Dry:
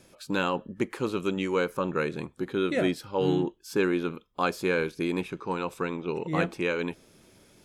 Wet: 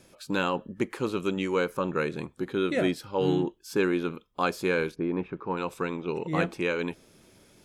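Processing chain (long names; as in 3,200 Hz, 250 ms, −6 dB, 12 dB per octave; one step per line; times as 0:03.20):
0:04.94–0:05.56: low-pass filter 1,100 Hz → 2,300 Hz 12 dB per octave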